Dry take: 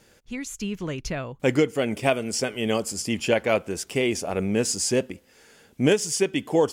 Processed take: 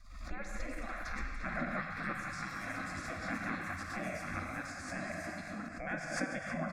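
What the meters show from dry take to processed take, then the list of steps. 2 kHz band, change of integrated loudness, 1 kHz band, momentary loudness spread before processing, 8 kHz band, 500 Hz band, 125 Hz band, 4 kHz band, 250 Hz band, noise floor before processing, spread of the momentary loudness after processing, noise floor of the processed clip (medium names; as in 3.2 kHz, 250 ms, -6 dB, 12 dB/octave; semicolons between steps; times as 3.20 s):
-6.0 dB, -14.5 dB, -7.5 dB, 10 LU, -21.5 dB, -21.0 dB, -13.5 dB, -20.0 dB, -15.5 dB, -58 dBFS, 6 LU, -45 dBFS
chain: peak limiter -14.5 dBFS, peak gain reduction 7.5 dB; gate -45 dBFS, range -13 dB; Schroeder reverb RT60 2.2 s, combs from 33 ms, DRR 2.5 dB; compression, threshold -28 dBFS, peak gain reduction 10 dB; three-band isolator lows -19 dB, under 230 Hz, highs -21 dB, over 3 kHz; band-stop 2.9 kHz, Q 16; spectral gate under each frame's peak -20 dB weak; ever faster or slower copies 341 ms, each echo +4 st, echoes 2, each echo -6 dB; RIAA curve playback; static phaser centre 610 Hz, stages 8; on a send: delay 110 ms -12 dB; on the sum: swell ahead of each attack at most 64 dB/s; trim +11 dB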